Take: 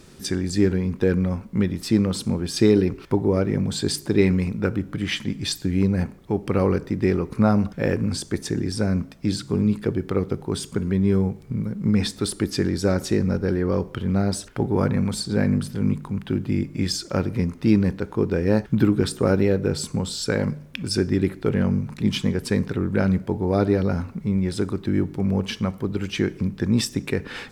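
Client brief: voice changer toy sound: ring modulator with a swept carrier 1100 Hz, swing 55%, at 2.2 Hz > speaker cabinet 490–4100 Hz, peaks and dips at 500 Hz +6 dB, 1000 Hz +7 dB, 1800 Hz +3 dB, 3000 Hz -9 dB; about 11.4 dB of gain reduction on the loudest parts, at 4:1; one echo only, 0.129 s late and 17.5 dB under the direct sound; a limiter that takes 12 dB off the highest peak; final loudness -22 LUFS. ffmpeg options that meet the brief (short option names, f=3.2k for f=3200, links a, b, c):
-af "acompressor=threshold=-26dB:ratio=4,alimiter=limit=-22.5dB:level=0:latency=1,aecho=1:1:129:0.133,aeval=exprs='val(0)*sin(2*PI*1100*n/s+1100*0.55/2.2*sin(2*PI*2.2*n/s))':c=same,highpass=490,equalizer=f=500:t=q:w=4:g=6,equalizer=f=1k:t=q:w=4:g=7,equalizer=f=1.8k:t=q:w=4:g=3,equalizer=f=3k:t=q:w=4:g=-9,lowpass=f=4.1k:w=0.5412,lowpass=f=4.1k:w=1.3066,volume=10.5dB"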